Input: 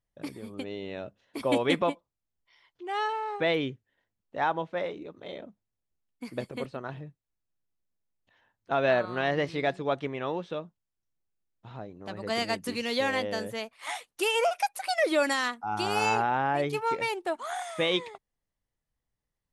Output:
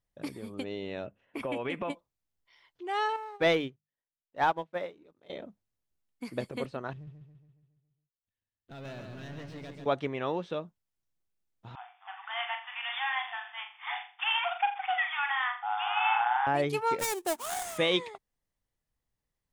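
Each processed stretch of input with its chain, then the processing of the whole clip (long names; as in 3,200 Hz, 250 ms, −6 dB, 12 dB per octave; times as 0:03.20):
0:01.06–0:01.90: high shelf with overshoot 3,300 Hz −6 dB, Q 3 + downward compressor 4 to 1, threshold −31 dBFS + one half of a high-frequency compander decoder only
0:03.16–0:05.30: mains-hum notches 50/100/150/200 Hz + leveller curve on the samples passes 1 + expander for the loud parts 2.5 to 1, over −35 dBFS
0:06.93–0:09.86: guitar amp tone stack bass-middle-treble 10-0-1 + leveller curve on the samples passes 3 + repeating echo 139 ms, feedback 54%, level −5.5 dB
0:11.75–0:16.47: variable-slope delta modulation 32 kbit/s + linear-phase brick-wall band-pass 700–3,600 Hz + flutter between parallel walls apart 7.2 metres, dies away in 0.38 s
0:16.99–0:17.78: gap after every zero crossing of 0.19 ms + high shelf with overshoot 5,700 Hz +7.5 dB, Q 1.5
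whole clip: no processing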